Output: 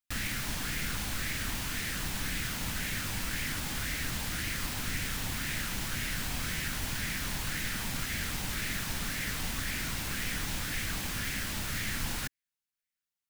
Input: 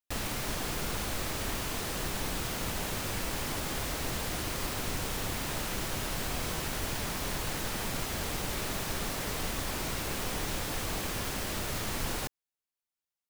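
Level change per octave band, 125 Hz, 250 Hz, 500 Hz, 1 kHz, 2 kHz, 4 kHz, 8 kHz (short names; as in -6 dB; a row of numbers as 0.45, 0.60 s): 0.0, -1.5, -9.5, -4.5, +3.5, +0.5, 0.0 dB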